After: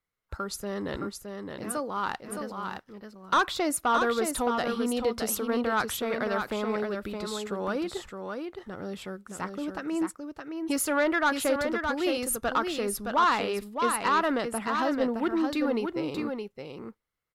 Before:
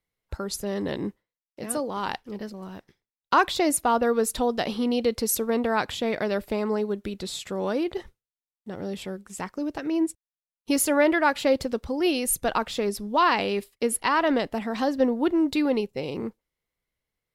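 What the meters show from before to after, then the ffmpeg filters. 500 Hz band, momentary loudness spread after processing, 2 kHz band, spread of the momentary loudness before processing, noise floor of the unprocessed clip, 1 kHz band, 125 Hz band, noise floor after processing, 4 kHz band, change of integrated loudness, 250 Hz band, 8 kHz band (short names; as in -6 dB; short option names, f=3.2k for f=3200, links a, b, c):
-4.0 dB, 13 LU, -1.0 dB, 13 LU, under -85 dBFS, -1.5 dB, -3.5 dB, -67 dBFS, -3.0 dB, -3.5 dB, -4.0 dB, -4.0 dB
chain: -af "equalizer=f=1.3k:w=2.2:g=10,asoftclip=type=tanh:threshold=-12.5dB,aecho=1:1:617:0.531,volume=-4.5dB"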